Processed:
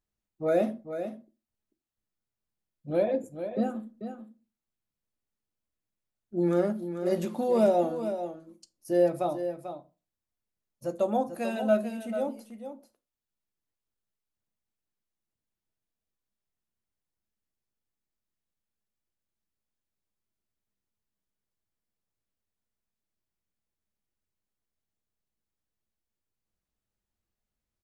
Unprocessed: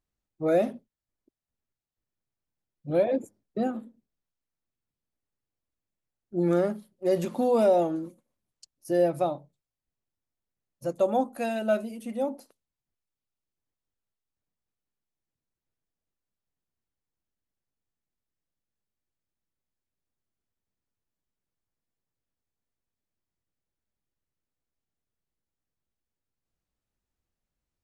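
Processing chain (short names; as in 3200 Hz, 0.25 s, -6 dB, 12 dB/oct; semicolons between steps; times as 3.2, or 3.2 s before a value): echo 0.442 s -9.5 dB; reverb RT60 0.30 s, pre-delay 5 ms, DRR 9.5 dB; gain -2.5 dB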